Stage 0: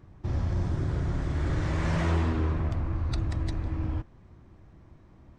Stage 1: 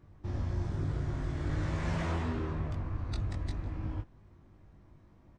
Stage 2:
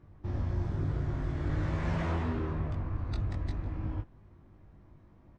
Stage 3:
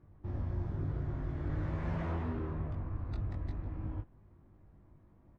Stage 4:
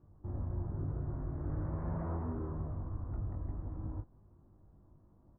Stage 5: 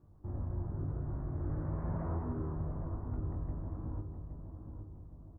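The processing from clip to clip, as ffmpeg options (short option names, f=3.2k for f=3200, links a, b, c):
-filter_complex "[0:a]asplit=2[a][b];[b]adelay=20,volume=-4dB[c];[a][c]amix=inputs=2:normalize=0,volume=-6.5dB"
-af "lowpass=f=2.9k:p=1,volume=1.5dB"
-af "highshelf=f=3k:g=-11.5,volume=-4dB"
-af "lowpass=f=1.3k:w=0.5412,lowpass=f=1.3k:w=1.3066,volume=-1.5dB"
-filter_complex "[0:a]asplit=2[a][b];[b]adelay=817,lowpass=f=1.1k:p=1,volume=-7dB,asplit=2[c][d];[d]adelay=817,lowpass=f=1.1k:p=1,volume=0.49,asplit=2[e][f];[f]adelay=817,lowpass=f=1.1k:p=1,volume=0.49,asplit=2[g][h];[h]adelay=817,lowpass=f=1.1k:p=1,volume=0.49,asplit=2[i][j];[j]adelay=817,lowpass=f=1.1k:p=1,volume=0.49,asplit=2[k][l];[l]adelay=817,lowpass=f=1.1k:p=1,volume=0.49[m];[a][c][e][g][i][k][m]amix=inputs=7:normalize=0"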